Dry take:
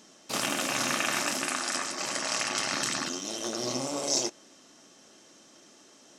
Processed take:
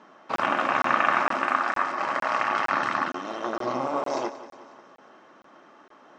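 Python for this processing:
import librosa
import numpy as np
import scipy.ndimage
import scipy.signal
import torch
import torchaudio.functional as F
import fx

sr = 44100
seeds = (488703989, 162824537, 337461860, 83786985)

y = fx.bandpass_edges(x, sr, low_hz=110.0, high_hz=2100.0)
y = fx.peak_eq(y, sr, hz=1100.0, db=13.0, octaves=1.7)
y = fx.echo_feedback(y, sr, ms=181, feedback_pct=55, wet_db=-15)
y = fx.buffer_crackle(y, sr, first_s=0.36, period_s=0.46, block=1024, kind='zero')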